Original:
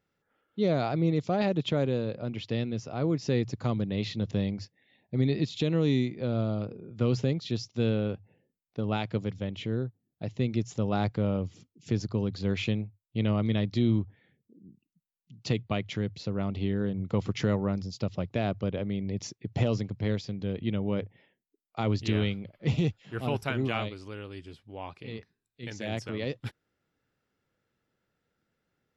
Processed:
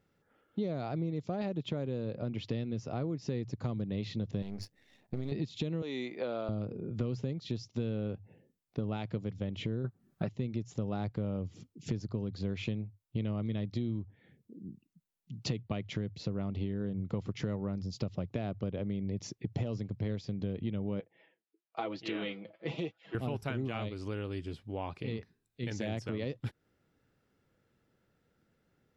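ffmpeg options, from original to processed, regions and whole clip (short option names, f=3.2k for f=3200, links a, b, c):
-filter_complex "[0:a]asettb=1/sr,asplit=3[a][b][c];[a]atrim=end=4.424[d];[b]atrim=start=4.42:end=5.32,asetpts=PTS-STARTPTS,afade=t=in:d=0.004:c=qsin,afade=t=out:st=0.896:d=0.004:c=qsin,aeval=exprs='if(lt(val(0),0),0.251*val(0),val(0))':c=same,bass=f=250:g=-2,treble=f=4k:g=5,acompressor=threshold=-32dB:ratio=3:attack=3.2:release=140:knee=1:detection=peak[e];[c]atrim=start=5.316[f];[d][e]acrossfade=d=0.004:c1=hsin:c2=qsin[g];[g][f]acrossfade=d=0.004:c1=qsin:c2=hsin,asettb=1/sr,asplit=3[h][i][j];[h]atrim=end=5.824[k];[i]atrim=start=5.82:end=6.49,asetpts=PTS-STARTPTS,afade=t=in:d=0.004:c=qsin,afade=t=out:st=0.666:d=0.004:c=qsin,highpass=620,equalizer=f=6.5k:w=0.59:g=-5,acontrast=32[l];[j]atrim=start=6.486[m];[k][l]acrossfade=d=0.004:c1=hsin:c2=qsin[n];[n][m]acrossfade=d=0.004:c1=qsin:c2=hsin,asettb=1/sr,asplit=3[o][p][q];[o]atrim=end=9.844[r];[p]atrim=start=9.84:end=10.29,asetpts=PTS-STARTPTS,afade=t=in:d=0.004:c=qsin,afade=t=out:st=0.446:d=0.004:c=qsin,equalizer=f=1.3k:w=1.4:g=12.5,aecho=1:1:5.2:0.41,atrim=end_sample=19845,acontrast=50[s];[q]atrim=start=10.286[t];[r][s]acrossfade=d=0.004:c1=hsin:c2=qsin[u];[u][t]acrossfade=d=0.004:c1=qsin:c2=hsin,asettb=1/sr,asplit=3[v][w][x];[v]atrim=end=21.004[y];[w]atrim=start=21:end=23.15,asetpts=PTS-STARTPTS,afade=t=in:d=0.004:c=qsin,afade=t=out:st=2.146:d=0.004:c=qsin,highpass=410,lowpass=3.9k,aecho=1:1:6.1:0.67,atrim=end_sample=94815,flanger=delay=1.3:depth=8.3:regen=61:speed=1:shape=sinusoidal[z];[x]atrim=start=23.146[aa];[y][z]acrossfade=d=0.004:c1=hsin:c2=qsin[ab];[ab][aa]acrossfade=d=0.004:c1=qsin:c2=hsin,tiltshelf=f=660:g=3,acompressor=threshold=-37dB:ratio=6,volume=4.5dB"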